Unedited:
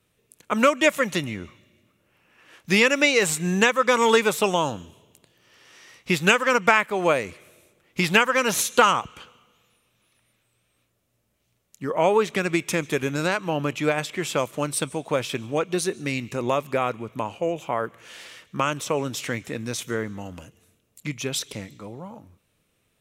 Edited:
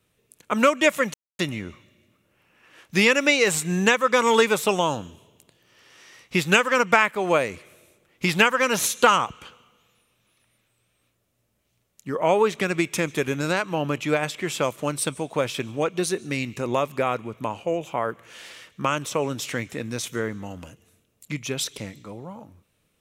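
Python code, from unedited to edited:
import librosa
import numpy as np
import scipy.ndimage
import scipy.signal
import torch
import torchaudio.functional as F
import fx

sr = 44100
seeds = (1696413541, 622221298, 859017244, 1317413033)

y = fx.edit(x, sr, fx.insert_silence(at_s=1.14, length_s=0.25), tone=tone)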